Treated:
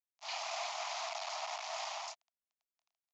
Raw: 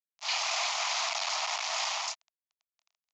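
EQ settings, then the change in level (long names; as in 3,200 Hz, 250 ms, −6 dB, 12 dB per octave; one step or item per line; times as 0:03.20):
resonant band-pass 640 Hz, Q 2.8
spectral tilt +6 dB per octave
+1.5 dB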